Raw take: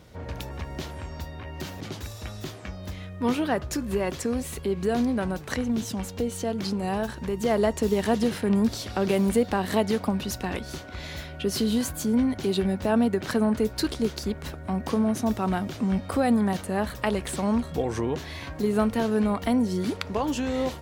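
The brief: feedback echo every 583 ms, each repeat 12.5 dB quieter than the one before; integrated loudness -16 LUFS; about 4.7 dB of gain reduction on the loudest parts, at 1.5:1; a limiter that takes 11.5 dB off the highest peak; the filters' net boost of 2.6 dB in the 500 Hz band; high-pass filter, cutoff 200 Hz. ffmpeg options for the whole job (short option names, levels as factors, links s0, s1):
-af "highpass=200,equalizer=f=500:t=o:g=3.5,acompressor=threshold=0.0355:ratio=1.5,alimiter=limit=0.106:level=0:latency=1,aecho=1:1:583|1166|1749:0.237|0.0569|0.0137,volume=5.62"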